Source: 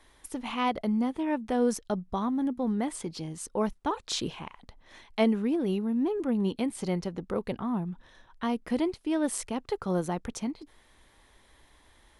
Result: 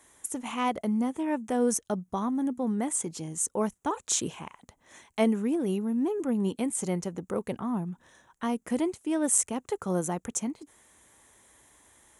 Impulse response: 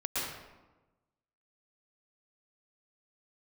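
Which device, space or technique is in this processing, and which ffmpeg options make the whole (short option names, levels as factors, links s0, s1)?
budget condenser microphone: -filter_complex "[0:a]asettb=1/sr,asplit=3[s0][s1][s2];[s0]atrim=end=1.654[s3];[s1]atrim=start=1.65:end=2.55,asetpts=PTS-STARTPTS,afade=t=in:d=0.004:c=qsin,afade=t=out:st=0.896:d=0.004:c=qsin,bandreject=f=7400:w=7.8[s4];[s2]atrim=start=2.546[s5];[s3][s4]acrossfade=d=0.004:c1=hsin:c2=qsin[s6];[s6][s5]acrossfade=d=0.004:c1=qsin:c2=hsin,highpass=92,highshelf=f=5700:t=q:w=3:g=7.5"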